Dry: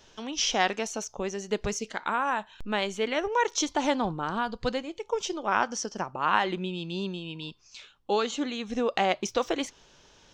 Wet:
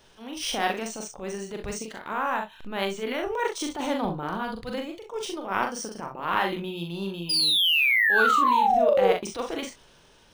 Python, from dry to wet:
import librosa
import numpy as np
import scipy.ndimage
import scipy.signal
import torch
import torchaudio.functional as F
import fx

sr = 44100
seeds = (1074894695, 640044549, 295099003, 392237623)

p1 = fx.transient(x, sr, attack_db=-12, sustain_db=1)
p2 = fx.spec_paint(p1, sr, seeds[0], shape='fall', start_s=7.29, length_s=1.83, low_hz=440.0, high_hz=5000.0, level_db=-22.0)
p3 = p2 + fx.room_early_taps(p2, sr, ms=(41, 64), db=(-4.0, -11.0), dry=0)
y = np.interp(np.arange(len(p3)), np.arange(len(p3))[::3], p3[::3])